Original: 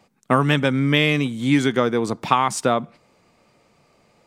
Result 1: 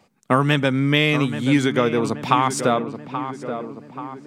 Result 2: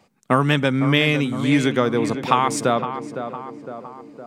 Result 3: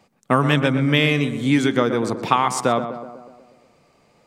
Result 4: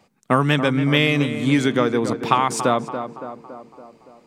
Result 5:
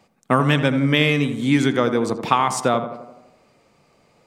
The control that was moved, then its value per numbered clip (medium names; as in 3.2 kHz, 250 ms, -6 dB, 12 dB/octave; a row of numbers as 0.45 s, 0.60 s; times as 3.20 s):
tape echo, time: 830 ms, 510 ms, 123 ms, 282 ms, 83 ms